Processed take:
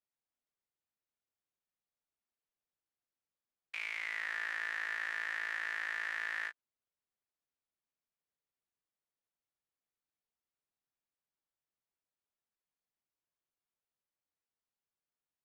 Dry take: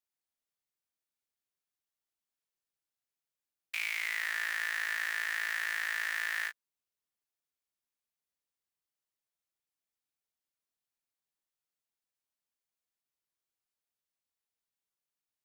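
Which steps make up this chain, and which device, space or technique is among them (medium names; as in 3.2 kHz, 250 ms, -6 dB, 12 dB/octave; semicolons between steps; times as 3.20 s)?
through cloth (low-pass 9.3 kHz 12 dB/octave; treble shelf 3.1 kHz -14 dB)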